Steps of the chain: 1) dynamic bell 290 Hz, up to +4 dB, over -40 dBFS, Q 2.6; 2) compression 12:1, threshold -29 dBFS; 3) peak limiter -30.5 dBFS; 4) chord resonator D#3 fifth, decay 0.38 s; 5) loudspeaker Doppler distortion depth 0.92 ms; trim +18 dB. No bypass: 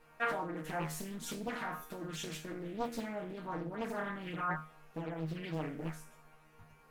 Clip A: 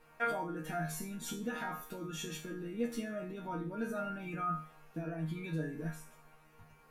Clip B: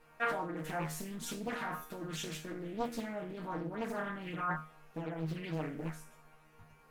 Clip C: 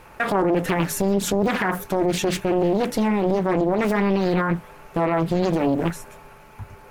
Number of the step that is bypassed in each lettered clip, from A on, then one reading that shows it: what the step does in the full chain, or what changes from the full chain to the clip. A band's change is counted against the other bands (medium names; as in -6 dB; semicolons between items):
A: 5, 2 kHz band -2.0 dB; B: 2, mean gain reduction 4.0 dB; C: 4, 500 Hz band +5.0 dB